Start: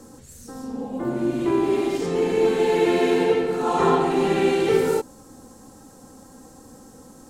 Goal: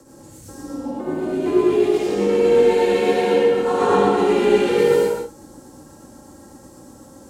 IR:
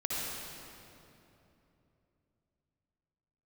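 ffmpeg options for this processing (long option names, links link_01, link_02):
-filter_complex "[0:a]tremolo=f=8.1:d=0.59[link_01];[1:a]atrim=start_sample=2205,afade=type=out:start_time=0.4:duration=0.01,atrim=end_sample=18081,asetrate=52920,aresample=44100[link_02];[link_01][link_02]afir=irnorm=-1:irlink=0,afreqshift=29,volume=1.5dB"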